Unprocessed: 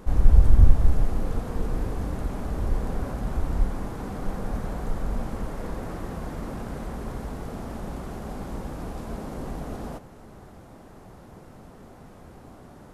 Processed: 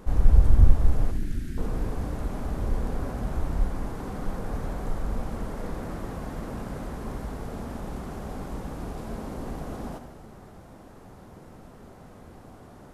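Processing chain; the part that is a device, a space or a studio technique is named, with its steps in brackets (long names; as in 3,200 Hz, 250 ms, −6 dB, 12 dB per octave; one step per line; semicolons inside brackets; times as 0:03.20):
0:01.11–0:01.58: elliptic band-stop filter 340–1,600 Hz
saturated reverb return (on a send at −7 dB: convolution reverb RT60 1.3 s, pre-delay 46 ms + soft clipping −24 dBFS, distortion −3 dB)
on the sum: level −1.5 dB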